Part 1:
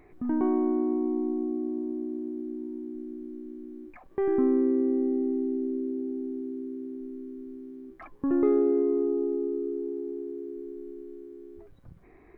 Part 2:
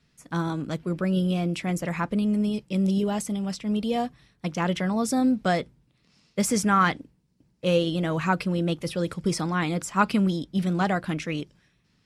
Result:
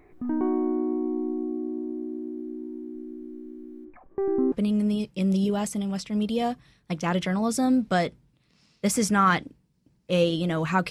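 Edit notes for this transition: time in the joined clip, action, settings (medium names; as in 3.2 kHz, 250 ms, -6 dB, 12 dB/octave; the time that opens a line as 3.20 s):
part 1
3.84–4.52 s: low-pass 1.8 kHz -> 1 kHz
4.52 s: go over to part 2 from 2.06 s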